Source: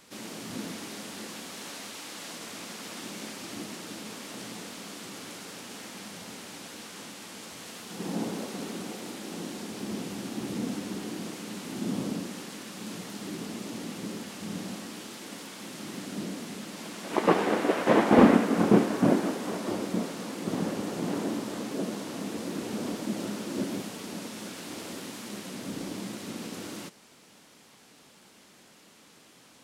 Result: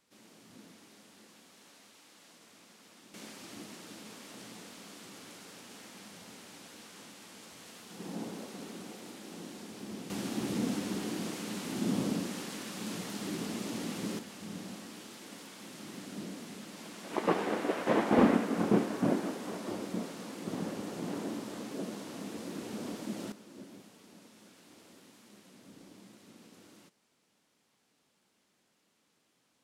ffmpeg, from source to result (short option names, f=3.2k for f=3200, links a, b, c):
-af "asetnsamples=n=441:p=0,asendcmd='3.14 volume volume -8dB;10.1 volume volume 0dB;14.19 volume volume -6.5dB;23.32 volume volume -18dB',volume=-17.5dB"